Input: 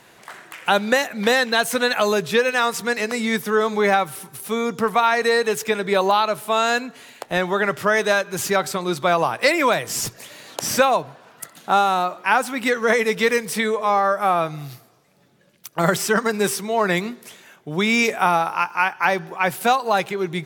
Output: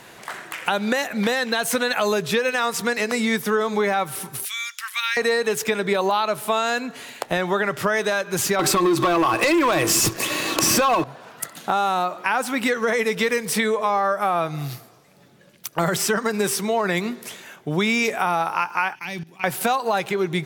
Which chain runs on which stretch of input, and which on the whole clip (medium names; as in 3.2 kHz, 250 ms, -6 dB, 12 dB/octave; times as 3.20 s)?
4.45–5.17 s: inverse Chebyshev high-pass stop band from 550 Hz, stop band 60 dB + short-mantissa float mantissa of 4-bit
8.59–11.04 s: small resonant body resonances 330/1100/2600 Hz, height 15 dB, ringing for 85 ms + compression 5:1, threshold -21 dBFS + waveshaping leveller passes 3
18.95–19.44 s: high-order bell 820 Hz -14.5 dB 2.4 oct + level held to a coarse grid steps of 18 dB
whole clip: peak limiter -10 dBFS; compression 2.5:1, threshold -26 dBFS; trim +5.5 dB